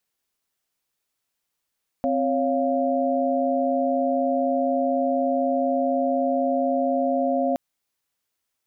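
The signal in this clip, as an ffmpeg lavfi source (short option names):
-f lavfi -i "aevalsrc='0.0631*(sin(2*PI*261.63*t)+sin(2*PI*554.37*t)+sin(2*PI*698.46*t))':d=5.52:s=44100"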